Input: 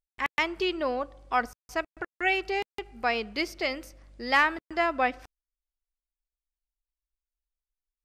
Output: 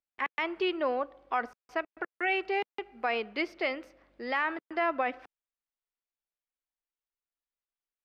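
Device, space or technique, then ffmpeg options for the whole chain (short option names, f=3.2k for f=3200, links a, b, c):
DJ mixer with the lows and highs turned down: -filter_complex "[0:a]acrossover=split=220 3500:gain=0.1 1 0.0891[a][b][c];[a][b][c]amix=inputs=3:normalize=0,alimiter=limit=-18.5dB:level=0:latency=1:release=37"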